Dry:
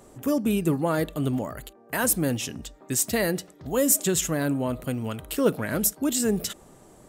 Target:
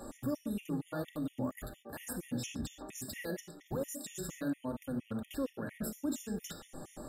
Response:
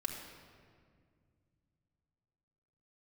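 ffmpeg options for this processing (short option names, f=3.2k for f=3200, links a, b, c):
-filter_complex "[0:a]asettb=1/sr,asplit=3[a][b][c];[a]atrim=end=4.854[d];[b]atrim=start=4.85:end=5.9,asetpts=PTS-STARTPTS,afade=t=in:d=0.004:c=qsin,afade=t=out:st=1.046:d=0.004:c=qsin,highshelf=f=2.7k:g=-7.5[e];[c]atrim=start=5.896[f];[d][e]acrossfade=d=0.004:c1=hsin:c2=qsin[g];[g][f]acrossfade=d=0.004:c1=qsin:c2=hsin,acompressor=threshold=-42dB:ratio=2.5,alimiter=level_in=10.5dB:limit=-24dB:level=0:latency=1:release=60,volume=-10.5dB[h];[1:a]atrim=start_sample=2205,atrim=end_sample=6615[i];[h][i]afir=irnorm=-1:irlink=0,afftfilt=real='re*gt(sin(2*PI*4.3*pts/sr)*(1-2*mod(floor(b*sr/1024/1800),2)),0)':imag='im*gt(sin(2*PI*4.3*pts/sr)*(1-2*mod(floor(b*sr/1024/1800),2)),0)':win_size=1024:overlap=0.75,volume=5.5dB"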